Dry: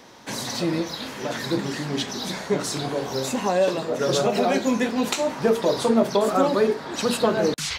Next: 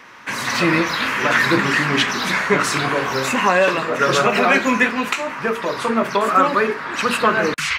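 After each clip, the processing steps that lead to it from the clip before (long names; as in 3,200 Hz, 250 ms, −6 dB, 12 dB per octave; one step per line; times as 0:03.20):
flat-topped bell 1,700 Hz +13 dB
automatic gain control
level −2 dB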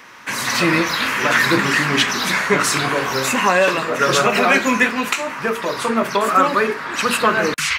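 high-shelf EQ 5,900 Hz +8.5 dB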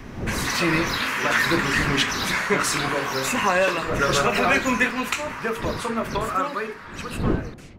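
fade-out on the ending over 2.39 s
wind on the microphone 270 Hz −28 dBFS
level −5 dB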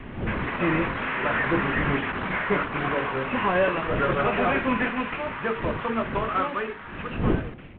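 variable-slope delta modulation 16 kbit/s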